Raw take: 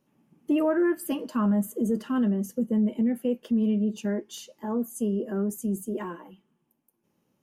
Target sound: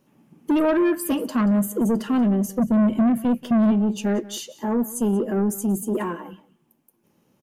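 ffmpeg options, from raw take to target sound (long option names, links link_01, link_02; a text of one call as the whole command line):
ffmpeg -i in.wav -filter_complex "[0:a]asplit=3[link_01][link_02][link_03];[link_01]afade=type=out:start_time=2.59:duration=0.02[link_04];[link_02]asubboost=boost=10:cutoff=150,afade=type=in:start_time=2.59:duration=0.02,afade=type=out:start_time=3.7:duration=0.02[link_05];[link_03]afade=type=in:start_time=3.7:duration=0.02[link_06];[link_04][link_05][link_06]amix=inputs=3:normalize=0,asoftclip=type=tanh:threshold=-24dB,aecho=1:1:182:0.112,volume=8.5dB" out.wav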